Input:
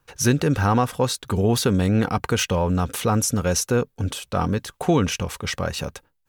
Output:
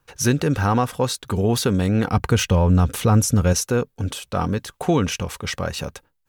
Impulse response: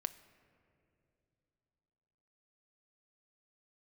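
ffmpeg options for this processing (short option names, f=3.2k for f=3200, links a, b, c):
-filter_complex "[0:a]asettb=1/sr,asplit=3[a][b][c];[a]atrim=end=2.134[d];[b]atrim=start=2.13:end=3.53,asetpts=PTS-STARTPTS,afade=t=in:d=0.004:c=qsin,afade=t=out:st=1.396:d=0.004:c=qsin,lowshelf=f=160:g=11[e];[c]atrim=start=3.526[f];[d][e]acrossfade=d=0.004:c1=hsin:c2=qsin[g];[g][f]acrossfade=d=0.004:c1=qsin:c2=hsin"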